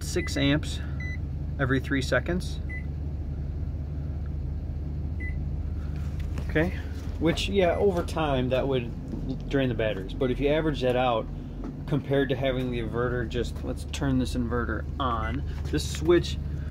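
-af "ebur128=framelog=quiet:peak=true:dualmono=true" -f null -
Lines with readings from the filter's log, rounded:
Integrated loudness:
  I:         -25.4 LUFS
  Threshold: -35.4 LUFS
Loudness range:
  LRA:         6.2 LU
  Threshold: -45.6 LUFS
  LRA low:   -30.1 LUFS
  LRA high:  -23.9 LUFS
True peak:
  Peak:      -10.4 dBFS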